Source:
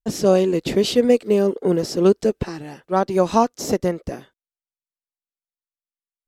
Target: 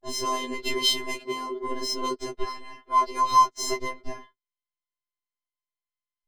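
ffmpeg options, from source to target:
ffmpeg -i in.wav -af "adynamicsmooth=sensitivity=5.5:basefreq=3700,afftfilt=real='hypot(re,im)*cos(PI*b)':imag='0':win_size=512:overlap=0.75,afftfilt=real='re*2.45*eq(mod(b,6),0)':imag='im*2.45*eq(mod(b,6),0)':win_size=2048:overlap=0.75,volume=6.5dB" out.wav

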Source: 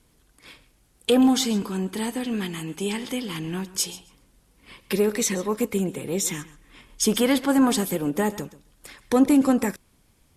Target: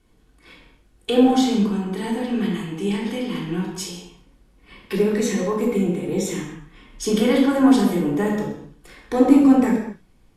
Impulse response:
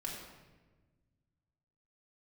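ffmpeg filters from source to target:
-filter_complex "[0:a]highshelf=frequency=5000:gain=-10.5[link_01];[1:a]atrim=start_sample=2205,afade=type=out:start_time=0.39:duration=0.01,atrim=end_sample=17640,asetrate=57330,aresample=44100[link_02];[link_01][link_02]afir=irnorm=-1:irlink=0,volume=4.5dB"

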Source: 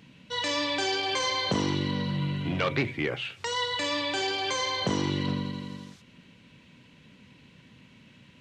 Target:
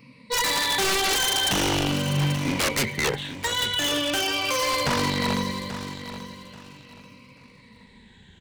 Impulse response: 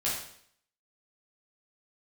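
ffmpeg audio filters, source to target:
-filter_complex "[0:a]afftfilt=real='re*pow(10,18/40*sin(2*PI*(0.94*log(max(b,1)*sr/1024/100)/log(2)-(-0.41)*(pts-256)/sr)))':imag='im*pow(10,18/40*sin(2*PI*(0.94*log(max(b,1)*sr/1024/100)/log(2)-(-0.41)*(pts-256)/sr)))':win_size=1024:overlap=0.75,asubboost=boost=3.5:cutoff=71,aeval=exprs='0.316*(cos(1*acos(clip(val(0)/0.316,-1,1)))-cos(1*PI/2))+0.0282*(cos(7*acos(clip(val(0)/0.316,-1,1)))-cos(7*PI/2))':channel_layout=same,aeval=exprs='0.0562*(abs(mod(val(0)/0.0562+3,4)-2)-1)':channel_layout=same,asplit=2[link_01][link_02];[link_02]aecho=0:1:835|1670|2505:0.251|0.0653|0.017[link_03];[link_01][link_03]amix=inputs=2:normalize=0,volume=8.5dB"

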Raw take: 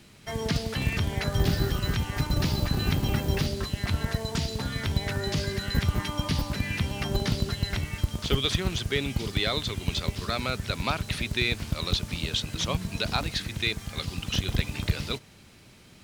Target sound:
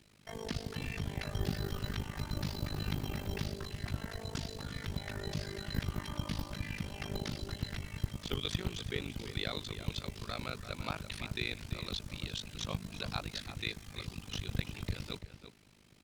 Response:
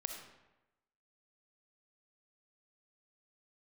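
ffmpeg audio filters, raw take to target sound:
-filter_complex "[0:a]tremolo=f=51:d=0.974,asplit=2[link_01][link_02];[link_02]adelay=338.2,volume=-10dB,highshelf=frequency=4000:gain=-7.61[link_03];[link_01][link_03]amix=inputs=2:normalize=0,volume=-7dB"

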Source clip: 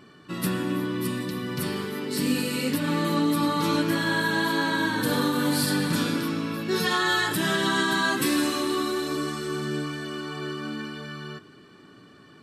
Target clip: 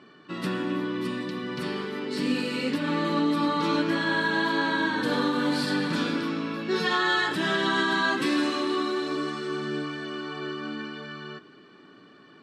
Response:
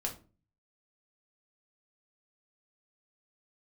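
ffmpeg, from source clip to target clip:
-af "highpass=200,lowpass=4400"

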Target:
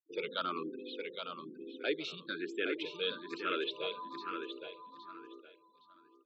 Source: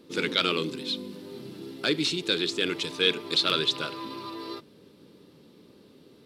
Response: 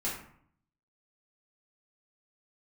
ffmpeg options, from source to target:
-filter_complex "[0:a]afftfilt=real='re*gte(hypot(re,im),0.0224)':imag='im*gte(hypot(re,im),0.0224)':win_size=1024:overlap=0.75,acrossover=split=5400[link_01][link_02];[link_01]highpass=350,lowpass=2400[link_03];[link_02]alimiter=level_in=11.5dB:limit=-24dB:level=0:latency=1:release=167,volume=-11.5dB[link_04];[link_03][link_04]amix=inputs=2:normalize=0,aecho=1:1:815|1630|2445:0.473|0.114|0.0273,asplit=2[link_05][link_06];[link_06]afreqshift=1.1[link_07];[link_05][link_07]amix=inputs=2:normalize=1,volume=-3dB"

